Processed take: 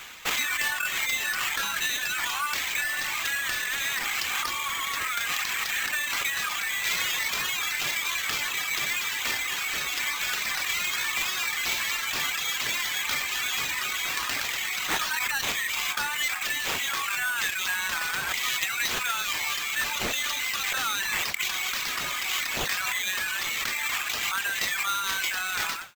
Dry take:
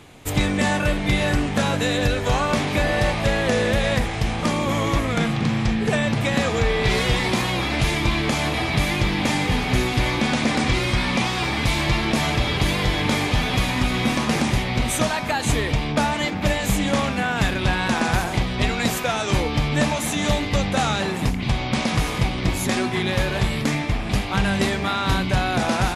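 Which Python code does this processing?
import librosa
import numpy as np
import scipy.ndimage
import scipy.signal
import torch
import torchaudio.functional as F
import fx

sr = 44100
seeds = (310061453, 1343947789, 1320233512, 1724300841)

p1 = fx.fade_out_tail(x, sr, length_s=0.63)
p2 = scipy.signal.sosfilt(scipy.signal.cheby2(4, 50, 470.0, 'highpass', fs=sr, output='sos'), p1)
p3 = fx.over_compress(p2, sr, threshold_db=-35.0, ratio=-0.5)
p4 = p2 + F.gain(torch.from_numpy(p3), 0.0).numpy()
p5 = fx.quant_float(p4, sr, bits=2)
p6 = fx.dereverb_blind(p5, sr, rt60_s=1.5)
y = fx.sample_hold(p6, sr, seeds[0], rate_hz=10000.0, jitter_pct=0)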